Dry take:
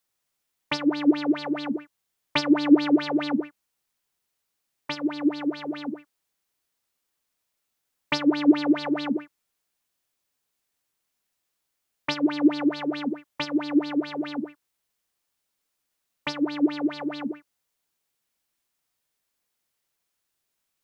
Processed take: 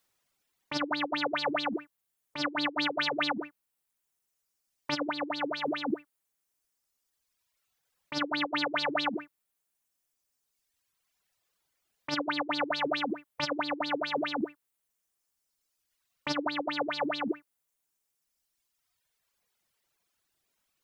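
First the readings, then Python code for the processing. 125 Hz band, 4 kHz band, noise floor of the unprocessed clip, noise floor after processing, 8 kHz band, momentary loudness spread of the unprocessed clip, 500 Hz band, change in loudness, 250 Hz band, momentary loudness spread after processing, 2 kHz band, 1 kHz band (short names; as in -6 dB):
-5.5 dB, +0.5 dB, -80 dBFS, -82 dBFS, n/a, 14 LU, -3.5 dB, -6.5 dB, -13.0 dB, 9 LU, +1.5 dB, +1.5 dB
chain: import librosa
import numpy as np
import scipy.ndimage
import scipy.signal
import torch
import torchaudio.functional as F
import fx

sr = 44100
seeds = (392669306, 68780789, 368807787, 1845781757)

y = fx.dereverb_blind(x, sr, rt60_s=1.9)
y = fx.high_shelf(y, sr, hz=4700.0, db=-4.0)
y = fx.over_compress(y, sr, threshold_db=-33.0, ratio=-1.0)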